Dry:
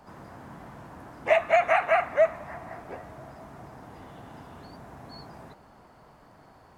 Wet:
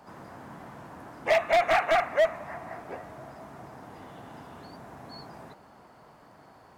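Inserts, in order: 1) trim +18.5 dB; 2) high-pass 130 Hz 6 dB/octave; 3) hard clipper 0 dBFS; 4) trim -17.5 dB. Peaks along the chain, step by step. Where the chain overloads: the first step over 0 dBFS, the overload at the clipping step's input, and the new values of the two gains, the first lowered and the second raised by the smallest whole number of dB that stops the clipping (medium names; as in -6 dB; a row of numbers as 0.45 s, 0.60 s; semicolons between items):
+10.0 dBFS, +10.0 dBFS, 0.0 dBFS, -17.5 dBFS; step 1, 10.0 dB; step 1 +8.5 dB, step 4 -7.5 dB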